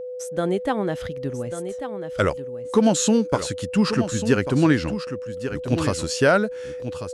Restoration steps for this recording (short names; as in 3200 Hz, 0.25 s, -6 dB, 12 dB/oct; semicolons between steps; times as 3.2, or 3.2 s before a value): notch 500 Hz, Q 30; inverse comb 1.142 s -10 dB